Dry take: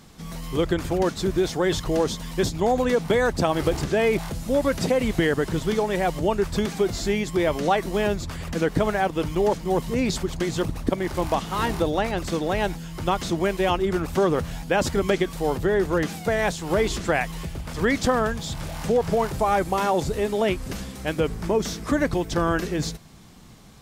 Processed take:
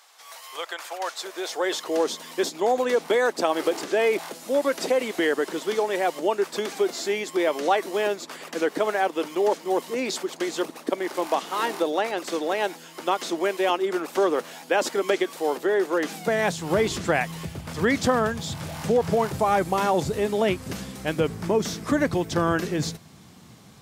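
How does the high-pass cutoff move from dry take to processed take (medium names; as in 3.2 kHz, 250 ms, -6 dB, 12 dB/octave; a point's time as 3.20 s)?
high-pass 24 dB/octave
0.99 s 690 Hz
2.07 s 300 Hz
15.99 s 300 Hz
16.65 s 82 Hz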